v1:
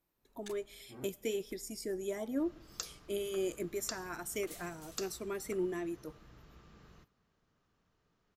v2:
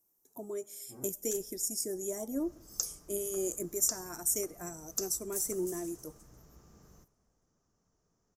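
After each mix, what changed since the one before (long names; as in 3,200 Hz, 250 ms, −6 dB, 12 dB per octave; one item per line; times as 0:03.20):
first sound: entry +0.85 s
second sound: add low-pass filter 6,400 Hz
master: add drawn EQ curve 730 Hz 0 dB, 2,800 Hz −12 dB, 4,100 Hz −9 dB, 5,900 Hz +13 dB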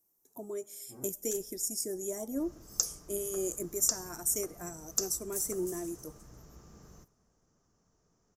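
second sound +4.5 dB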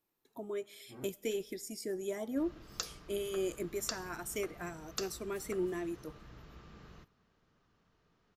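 first sound −11.5 dB
master: add drawn EQ curve 730 Hz 0 dB, 2,800 Hz +12 dB, 4,100 Hz +9 dB, 5,900 Hz −13 dB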